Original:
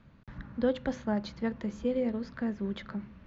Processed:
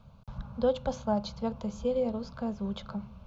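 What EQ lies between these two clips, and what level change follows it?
fixed phaser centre 770 Hz, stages 4; +6.0 dB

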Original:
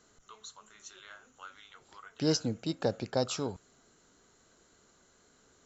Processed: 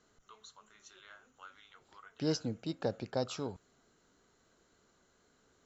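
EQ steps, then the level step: air absorption 67 m; -4.0 dB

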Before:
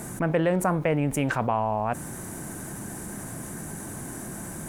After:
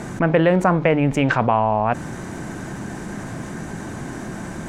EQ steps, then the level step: air absorption 180 m; high shelf 2700 Hz +8 dB; notches 50/100/150 Hz; +7.5 dB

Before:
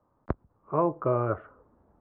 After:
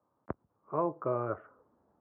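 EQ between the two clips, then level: BPF 100–2400 Hz; low shelf 210 Hz -4.5 dB; -5.0 dB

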